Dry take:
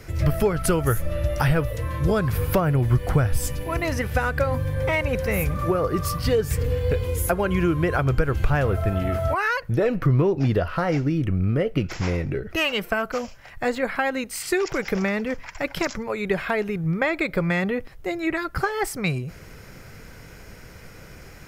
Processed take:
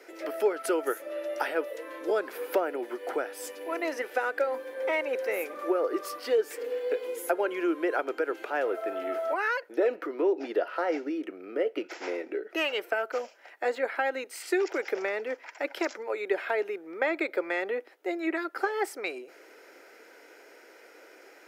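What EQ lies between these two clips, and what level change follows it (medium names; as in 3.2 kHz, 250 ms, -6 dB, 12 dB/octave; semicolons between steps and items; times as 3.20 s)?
steep high-pass 310 Hz 48 dB/octave; treble shelf 3.1 kHz -8.5 dB; band-stop 1.1 kHz, Q 5.9; -3.0 dB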